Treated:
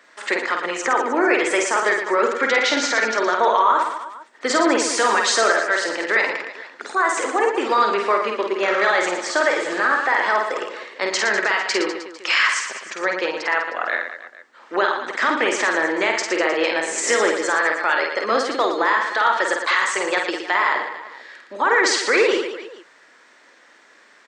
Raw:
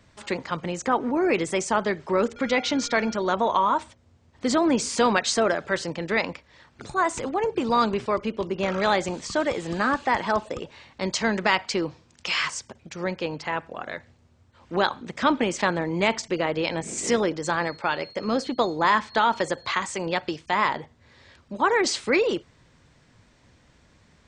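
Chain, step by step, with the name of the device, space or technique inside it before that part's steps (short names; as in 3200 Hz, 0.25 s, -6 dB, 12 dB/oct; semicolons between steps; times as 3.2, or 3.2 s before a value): laptop speaker (HPF 340 Hz 24 dB/oct; bell 1300 Hz +5 dB 0.56 oct; bell 1800 Hz +8.5 dB 0.51 oct; limiter -14 dBFS, peak gain reduction 11.5 dB); reverse bouncing-ball echo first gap 50 ms, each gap 1.3×, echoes 5; gain +4.5 dB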